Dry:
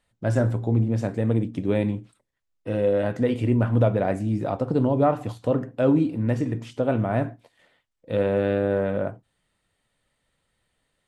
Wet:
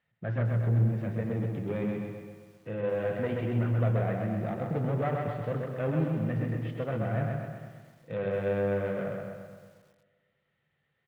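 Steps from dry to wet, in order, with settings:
one-sided soft clipper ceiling −19 dBFS
0:00.53–0:01.26: low-shelf EQ 160 Hz +5 dB
in parallel at −11.5 dB: hard clipping −28.5 dBFS, distortion −7 dB
on the sum: loudspeaker in its box 100–3,100 Hz, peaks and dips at 150 Hz +9 dB, 280 Hz −9 dB, 600 Hz −4 dB, 990 Hz −5 dB, 1,900 Hz +4 dB
repeating echo 130 ms, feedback 49%, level −3.5 dB
on a send at −15 dB: convolution reverb RT60 1.8 s, pre-delay 57 ms
on the sum: feedback echo at a low word length 229 ms, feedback 35%, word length 8 bits, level −11 dB
level −7 dB

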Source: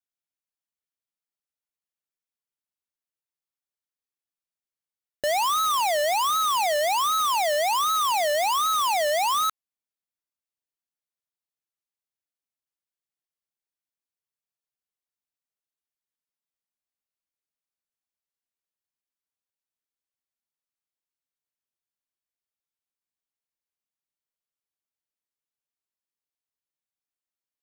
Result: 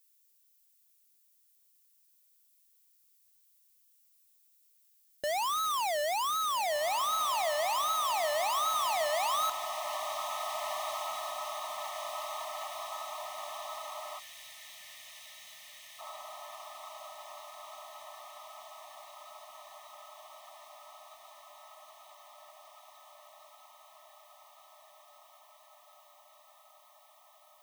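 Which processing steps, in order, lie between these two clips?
background noise violet −60 dBFS
feedback delay with all-pass diffusion 1,698 ms, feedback 73%, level −7.5 dB
gain on a spectral selection 0:14.19–0:15.99, 220–1,500 Hz −19 dB
level −8 dB

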